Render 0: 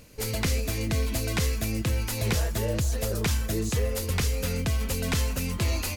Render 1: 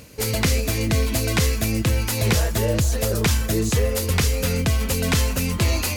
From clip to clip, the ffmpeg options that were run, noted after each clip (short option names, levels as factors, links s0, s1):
-af "areverse,acompressor=mode=upward:threshold=0.0158:ratio=2.5,areverse,highpass=53,volume=2.24"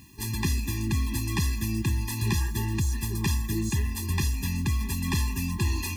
-af "acrusher=bits=7:mix=0:aa=0.000001,afftfilt=real='re*eq(mod(floor(b*sr/1024/400),2),0)':imag='im*eq(mod(floor(b*sr/1024/400),2),0)':win_size=1024:overlap=0.75,volume=0.531"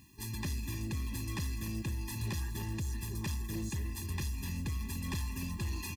-filter_complex "[0:a]asoftclip=type=tanh:threshold=0.0841,asplit=2[s0][s1];[s1]aecho=0:1:293:0.282[s2];[s0][s2]amix=inputs=2:normalize=0,volume=0.398"